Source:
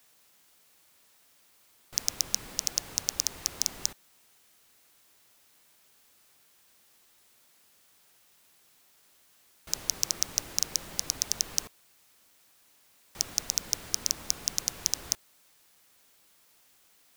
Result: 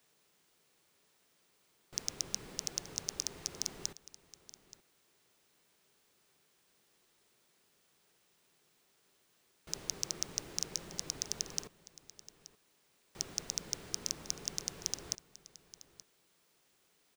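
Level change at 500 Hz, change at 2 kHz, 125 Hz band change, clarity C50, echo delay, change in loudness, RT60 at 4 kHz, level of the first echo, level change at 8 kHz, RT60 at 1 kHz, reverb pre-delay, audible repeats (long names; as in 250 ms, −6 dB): −1.5 dB, −7.0 dB, −3.0 dB, no reverb audible, 877 ms, −8.5 dB, no reverb audible, −17.5 dB, −8.5 dB, no reverb audible, no reverb audible, 1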